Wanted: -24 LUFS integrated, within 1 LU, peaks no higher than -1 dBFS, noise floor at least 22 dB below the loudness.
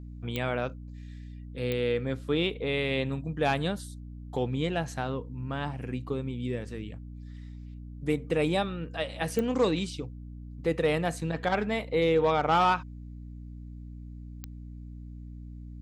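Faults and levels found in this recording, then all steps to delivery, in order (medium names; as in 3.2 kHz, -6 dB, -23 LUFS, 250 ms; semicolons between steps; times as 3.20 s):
clicks found 4; hum 60 Hz; highest harmonic 300 Hz; hum level -39 dBFS; loudness -29.5 LUFS; peak level -13.0 dBFS; loudness target -24.0 LUFS
-> de-click; hum notches 60/120/180/240/300 Hz; trim +5.5 dB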